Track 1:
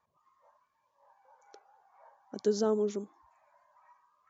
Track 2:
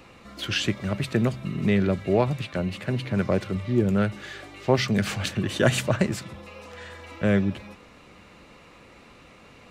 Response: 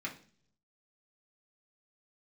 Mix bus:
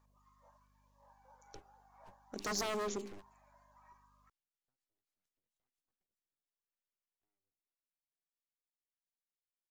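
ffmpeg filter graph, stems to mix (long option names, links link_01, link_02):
-filter_complex "[0:a]bandreject=frequency=50:width_type=h:width=6,bandreject=frequency=100:width_type=h:width=6,bandreject=frequency=150:width_type=h:width=6,bandreject=frequency=200:width_type=h:width=6,bandreject=frequency=250:width_type=h:width=6,bandreject=frequency=300:width_type=h:width=6,bandreject=frequency=350:width_type=h:width=6,bandreject=frequency=400:width_type=h:width=6,aeval=exprs='val(0)+0.000398*(sin(2*PI*50*n/s)+sin(2*PI*2*50*n/s)/2+sin(2*PI*3*50*n/s)/3+sin(2*PI*4*50*n/s)/4+sin(2*PI*5*50*n/s)/5)':channel_layout=same,aeval=exprs='0.0316*(abs(mod(val(0)/0.0316+3,4)-2)-1)':channel_layout=same,volume=-1.5dB,asplit=2[link_01][link_02];[1:a]acompressor=threshold=-28dB:ratio=10,aeval=exprs='abs(val(0))':channel_layout=same,volume=-18.5dB[link_03];[link_02]apad=whole_len=428178[link_04];[link_03][link_04]sidechaingate=range=-43dB:threshold=-56dB:ratio=16:detection=peak[link_05];[link_01][link_05]amix=inputs=2:normalize=0,bass=frequency=250:gain=-2,treble=frequency=4000:gain=7"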